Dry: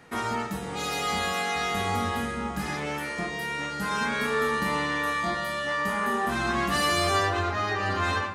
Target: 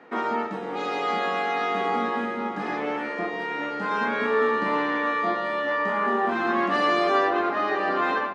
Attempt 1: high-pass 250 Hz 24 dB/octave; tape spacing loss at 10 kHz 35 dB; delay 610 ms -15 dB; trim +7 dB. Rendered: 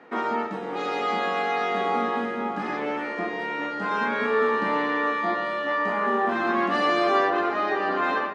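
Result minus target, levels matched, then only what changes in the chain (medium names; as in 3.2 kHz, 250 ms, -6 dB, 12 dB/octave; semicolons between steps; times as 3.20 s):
echo 211 ms early
change: delay 821 ms -15 dB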